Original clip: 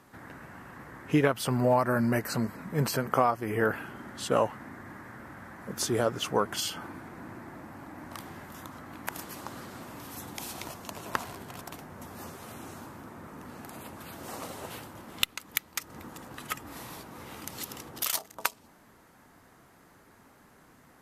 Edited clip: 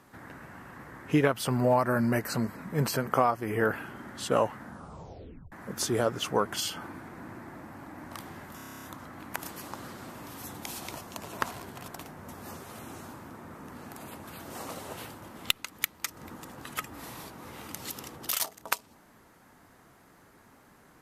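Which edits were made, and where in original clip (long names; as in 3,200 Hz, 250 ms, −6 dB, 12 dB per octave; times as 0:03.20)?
0:04.58: tape stop 0.94 s
0:08.56: stutter 0.03 s, 10 plays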